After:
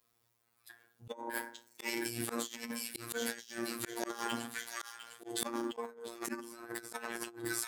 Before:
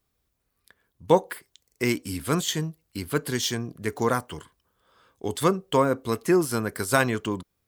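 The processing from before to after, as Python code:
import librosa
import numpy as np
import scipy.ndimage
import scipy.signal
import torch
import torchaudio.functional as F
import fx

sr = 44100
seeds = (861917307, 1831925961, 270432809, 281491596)

p1 = fx.low_shelf(x, sr, hz=79.0, db=-11.5)
p2 = fx.pitch_keep_formants(p1, sr, semitones=8.5)
p3 = fx.hum_notches(p2, sr, base_hz=60, count=7)
p4 = p3 + fx.echo_wet_highpass(p3, sr, ms=705, feedback_pct=35, hz=1600.0, wet_db=-7, dry=0)
p5 = fx.rev_fdn(p4, sr, rt60_s=0.52, lf_ratio=1.1, hf_ratio=0.45, size_ms=20.0, drr_db=1.5)
p6 = fx.robotise(p5, sr, hz=117.0)
p7 = fx.auto_swell(p6, sr, attack_ms=300.0)
p8 = fx.low_shelf(p7, sr, hz=460.0, db=-7.5)
p9 = fx.over_compress(p8, sr, threshold_db=-41.0, ratio=-0.5)
y = p9 * librosa.db_to_amplitude(1.5)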